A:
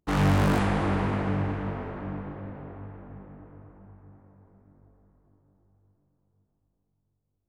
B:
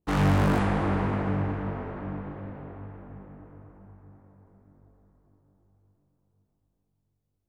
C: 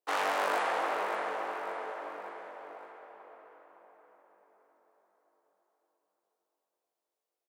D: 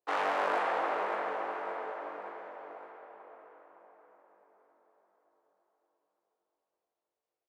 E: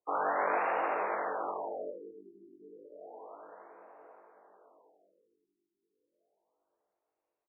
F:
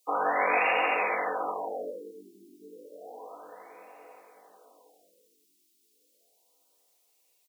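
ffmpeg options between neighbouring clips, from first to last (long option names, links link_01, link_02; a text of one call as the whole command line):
ffmpeg -i in.wav -af "adynamicequalizer=threshold=0.00447:dfrequency=2400:dqfactor=0.7:tfrequency=2400:tqfactor=0.7:attack=5:release=100:ratio=0.375:range=3:mode=cutabove:tftype=highshelf" out.wav
ffmpeg -i in.wav -af "highpass=frequency=510:width=0.5412,highpass=frequency=510:width=1.3066,aecho=1:1:568|1136|1704|2272:0.335|0.137|0.0563|0.0231" out.wav
ffmpeg -i in.wav -af "aemphasis=mode=reproduction:type=75fm" out.wav
ffmpeg -i in.wav -filter_complex "[0:a]asplit=2[link_01][link_02];[link_02]adelay=1341,volume=-9dB,highshelf=frequency=4000:gain=-30.2[link_03];[link_01][link_03]amix=inputs=2:normalize=0,afftfilt=real='re*lt(b*sr/1024,400*pow(2900/400,0.5+0.5*sin(2*PI*0.31*pts/sr)))':imag='im*lt(b*sr/1024,400*pow(2900/400,0.5+0.5*sin(2*PI*0.31*pts/sr)))':win_size=1024:overlap=0.75" out.wav
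ffmpeg -i in.wav -af "aecho=1:1:4:0.47,aexciter=amount=11.2:drive=3.6:freq=2300,volume=3dB" out.wav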